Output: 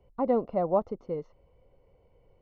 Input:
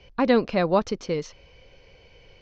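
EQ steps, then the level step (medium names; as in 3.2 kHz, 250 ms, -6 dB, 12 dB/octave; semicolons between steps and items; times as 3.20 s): dynamic bell 680 Hz, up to +7 dB, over -34 dBFS, Q 1.5; Savitzky-Golay filter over 65 samples; -8.5 dB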